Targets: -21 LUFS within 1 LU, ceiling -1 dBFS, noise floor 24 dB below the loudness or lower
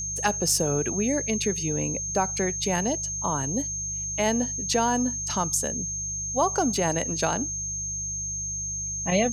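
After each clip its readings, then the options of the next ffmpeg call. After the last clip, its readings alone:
hum 50 Hz; harmonics up to 150 Hz; hum level -38 dBFS; steady tone 6400 Hz; tone level -29 dBFS; loudness -25.5 LUFS; peak -9.0 dBFS; loudness target -21.0 LUFS
-> -af "bandreject=f=50:t=h:w=4,bandreject=f=100:t=h:w=4,bandreject=f=150:t=h:w=4"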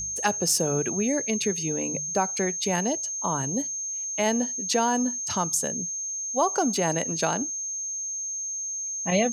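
hum none; steady tone 6400 Hz; tone level -29 dBFS
-> -af "bandreject=f=6.4k:w=30"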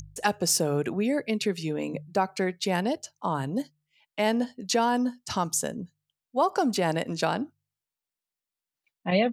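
steady tone none; loudness -27.5 LUFS; peak -8.5 dBFS; loudness target -21.0 LUFS
-> -af "volume=6.5dB"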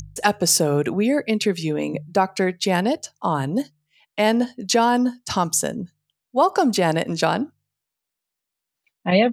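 loudness -21.0 LUFS; peak -2.0 dBFS; noise floor -83 dBFS

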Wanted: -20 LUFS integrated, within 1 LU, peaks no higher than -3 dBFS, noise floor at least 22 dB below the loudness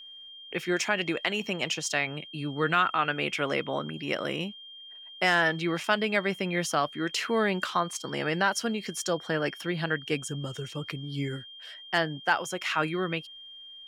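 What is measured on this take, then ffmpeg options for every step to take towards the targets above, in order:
steady tone 3200 Hz; tone level -44 dBFS; loudness -29.0 LUFS; peak -9.5 dBFS; loudness target -20.0 LUFS
-> -af "bandreject=f=3.2k:w=30"
-af "volume=9dB,alimiter=limit=-3dB:level=0:latency=1"

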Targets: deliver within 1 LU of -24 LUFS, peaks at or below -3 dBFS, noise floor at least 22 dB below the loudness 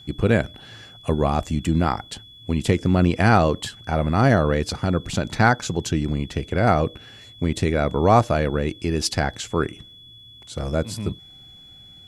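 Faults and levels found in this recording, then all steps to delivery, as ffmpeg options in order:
steady tone 3400 Hz; tone level -44 dBFS; loudness -22.0 LUFS; peak -3.5 dBFS; loudness target -24.0 LUFS
-> -af "bandreject=f=3.4k:w=30"
-af "volume=-2dB"

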